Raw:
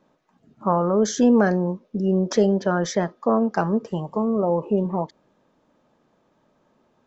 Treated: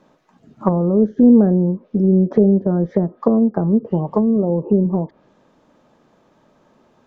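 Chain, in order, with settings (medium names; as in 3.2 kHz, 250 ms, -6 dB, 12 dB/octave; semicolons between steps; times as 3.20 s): low-pass that closes with the level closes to 350 Hz, closed at -19 dBFS; trim +8 dB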